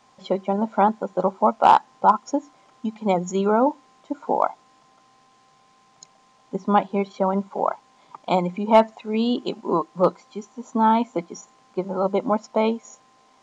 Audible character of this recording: noise floor -58 dBFS; spectral tilt -5.5 dB/octave

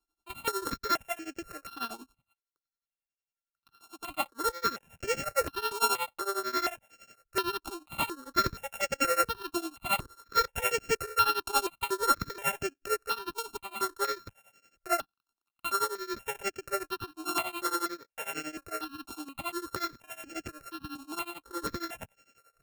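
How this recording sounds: a buzz of ramps at a fixed pitch in blocks of 32 samples; tremolo triangle 11 Hz, depth 95%; notches that jump at a steady rate 4.2 Hz 520–3800 Hz

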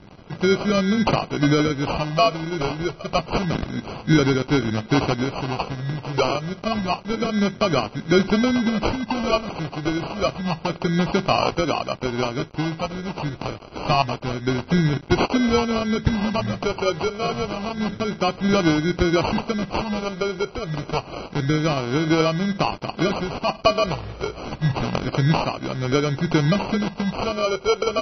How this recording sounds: a quantiser's noise floor 8-bit, dither none; phasing stages 8, 0.28 Hz, lowest notch 230–2200 Hz; aliases and images of a low sample rate 1.8 kHz, jitter 0%; MP3

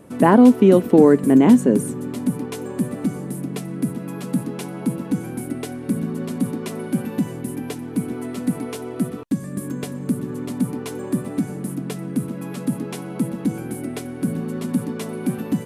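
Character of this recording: noise floor -32 dBFS; spectral tilt -6.5 dB/octave

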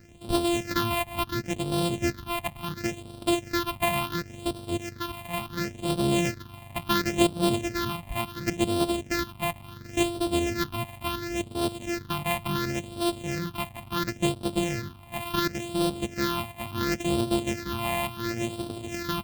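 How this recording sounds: a buzz of ramps at a fixed pitch in blocks of 128 samples; phasing stages 6, 0.71 Hz, lowest notch 390–1900 Hz

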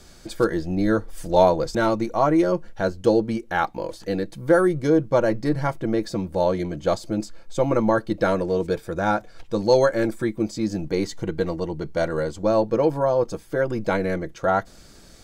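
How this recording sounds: noise floor -48 dBFS; spectral tilt -4.0 dB/octave

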